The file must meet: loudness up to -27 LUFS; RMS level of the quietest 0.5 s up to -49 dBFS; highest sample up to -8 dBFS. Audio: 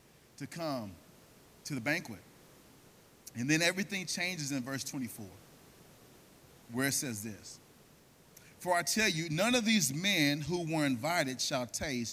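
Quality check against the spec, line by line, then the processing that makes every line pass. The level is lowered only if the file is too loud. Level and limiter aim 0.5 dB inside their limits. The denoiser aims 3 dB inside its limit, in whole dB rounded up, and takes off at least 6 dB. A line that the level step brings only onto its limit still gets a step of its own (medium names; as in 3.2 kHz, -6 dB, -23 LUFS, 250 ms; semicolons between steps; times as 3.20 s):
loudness -32.5 LUFS: pass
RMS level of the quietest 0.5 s -61 dBFS: pass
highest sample -14.0 dBFS: pass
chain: none needed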